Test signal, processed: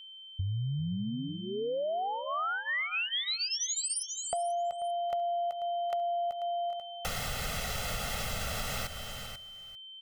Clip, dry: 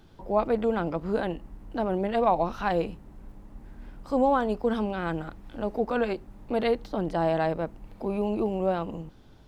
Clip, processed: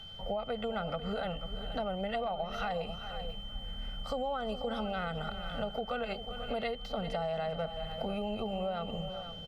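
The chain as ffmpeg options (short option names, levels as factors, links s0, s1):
-filter_complex "[0:a]highshelf=f=4000:g=-7,alimiter=limit=0.075:level=0:latency=1:release=379,acrossover=split=430[s0][s1];[s1]acompressor=threshold=0.0178:ratio=1.5[s2];[s0][s2]amix=inputs=2:normalize=0,tiltshelf=f=1100:g=-4,aecho=1:1:1.5:0.97,asplit=2[s3][s4];[s4]aecho=0:1:394:0.188[s5];[s3][s5]amix=inputs=2:normalize=0,aeval=exprs='val(0)+0.00447*sin(2*PI*3100*n/s)':c=same,asplit=2[s6][s7];[s7]aecho=0:1:489:0.211[s8];[s6][s8]amix=inputs=2:normalize=0,acompressor=threshold=0.0251:ratio=5,volume=1.12"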